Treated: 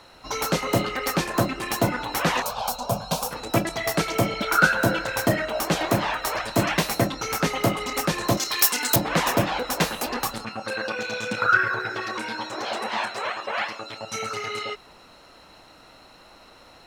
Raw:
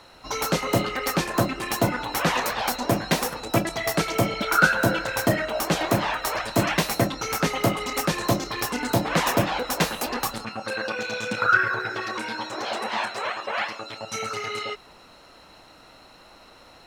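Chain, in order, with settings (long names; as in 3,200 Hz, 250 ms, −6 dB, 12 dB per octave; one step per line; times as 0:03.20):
0:02.42–0:03.31: phaser with its sweep stopped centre 790 Hz, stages 4
0:08.37–0:08.96: spectral tilt +4 dB per octave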